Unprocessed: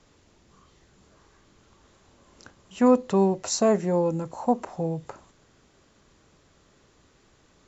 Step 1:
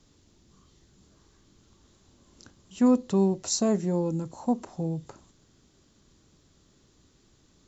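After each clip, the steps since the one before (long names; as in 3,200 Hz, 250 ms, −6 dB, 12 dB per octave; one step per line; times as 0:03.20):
flat-topped bell 1,100 Hz −8 dB 2.9 octaves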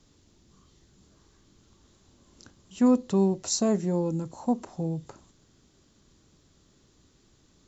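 no processing that can be heard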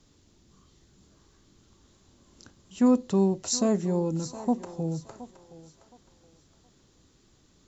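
feedback echo with a high-pass in the loop 719 ms, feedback 32%, high-pass 410 Hz, level −13.5 dB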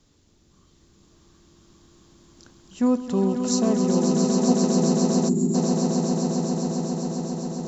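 echo that builds up and dies away 134 ms, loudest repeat 8, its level −6 dB
gain on a spectral selection 0:05.29–0:05.54, 420–6,700 Hz −17 dB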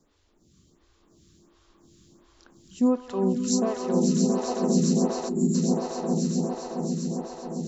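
phaser with staggered stages 1.4 Hz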